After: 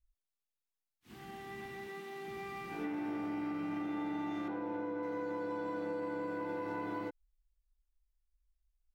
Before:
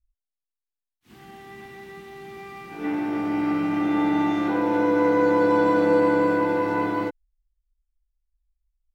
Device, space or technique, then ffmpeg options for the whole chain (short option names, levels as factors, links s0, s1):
serial compression, peaks first: -filter_complex "[0:a]acompressor=threshold=0.0398:ratio=6,acompressor=threshold=0.0178:ratio=2,asettb=1/sr,asplit=3[s0][s1][s2];[s0]atrim=end=1.874[s3];[s1]atrim=start=1.87:end=2.28,asetpts=PTS-STARTPTS,afade=t=in:d=0.004:c=qsin,afade=t=out:st=0.406:d=0.004:c=qsin,highpass=210[s4];[s2]atrim=start=2.276[s5];[s3][s4]acrossfade=d=0.004:c1=hsin:c2=qsin[s6];[s6][s5]acrossfade=d=0.004:c1=qsin:c2=hsin,asettb=1/sr,asplit=3[s7][s8][s9];[s7]atrim=end=4.484[s10];[s8]atrim=start=4.48:end=5.03,asetpts=PTS-STARTPTS,afade=t=in:d=0.004:c=qsin,afade=t=out:st=0.546:d=0.004:c=qsin,aemphasis=mode=reproduction:type=75kf[s11];[s9]atrim=start=5.026[s12];[s10][s11]acrossfade=d=0.004:c1=hsin:c2=qsin[s13];[s13][s12]acrossfade=d=0.004:c1=qsin:c2=hsin,volume=0.668"